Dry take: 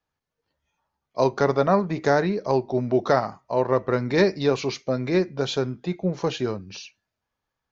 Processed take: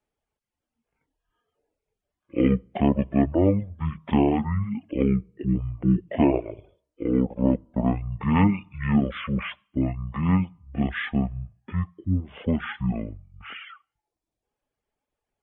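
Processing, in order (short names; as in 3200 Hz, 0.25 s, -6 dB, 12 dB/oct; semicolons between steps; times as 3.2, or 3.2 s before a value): speed mistake 15 ips tape played at 7.5 ips; reverb removal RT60 0.77 s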